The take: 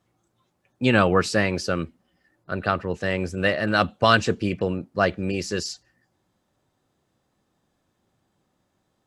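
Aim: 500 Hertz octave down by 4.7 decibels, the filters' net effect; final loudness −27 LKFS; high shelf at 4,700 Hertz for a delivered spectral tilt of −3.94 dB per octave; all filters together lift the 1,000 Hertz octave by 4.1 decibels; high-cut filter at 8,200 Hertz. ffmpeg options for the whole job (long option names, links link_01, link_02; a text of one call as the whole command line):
ffmpeg -i in.wav -af "lowpass=8200,equalizer=frequency=500:width_type=o:gain=-8.5,equalizer=frequency=1000:width_type=o:gain=7,highshelf=frequency=4700:gain=9,volume=-5dB" out.wav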